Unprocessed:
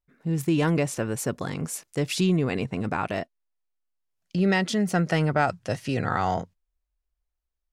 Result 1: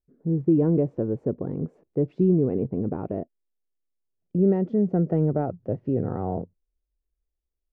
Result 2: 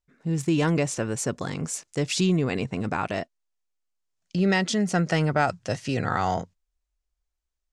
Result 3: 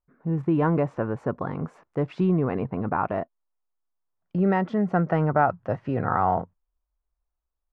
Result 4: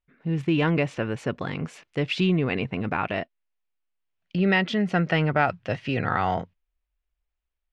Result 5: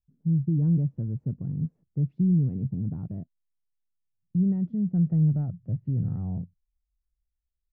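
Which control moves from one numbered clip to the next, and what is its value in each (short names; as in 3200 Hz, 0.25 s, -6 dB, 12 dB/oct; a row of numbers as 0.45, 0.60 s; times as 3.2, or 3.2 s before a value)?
synth low-pass, frequency: 420, 7300, 1100, 2800, 150 Hz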